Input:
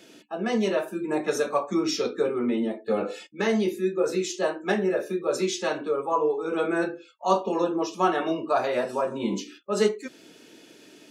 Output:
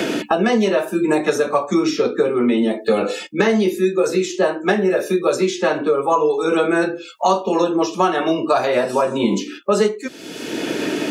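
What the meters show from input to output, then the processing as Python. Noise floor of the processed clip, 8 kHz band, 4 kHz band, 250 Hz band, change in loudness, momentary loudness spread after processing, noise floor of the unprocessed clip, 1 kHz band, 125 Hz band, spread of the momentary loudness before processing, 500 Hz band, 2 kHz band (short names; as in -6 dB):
-37 dBFS, +6.0 dB, +7.5 dB, +9.0 dB, +8.0 dB, 5 LU, -53 dBFS, +8.0 dB, +9.0 dB, 5 LU, +8.0 dB, +9.0 dB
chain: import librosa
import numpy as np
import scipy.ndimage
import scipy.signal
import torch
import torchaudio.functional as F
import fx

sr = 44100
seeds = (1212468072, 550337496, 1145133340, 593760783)

y = fx.band_squash(x, sr, depth_pct=100)
y = y * 10.0 ** (7.5 / 20.0)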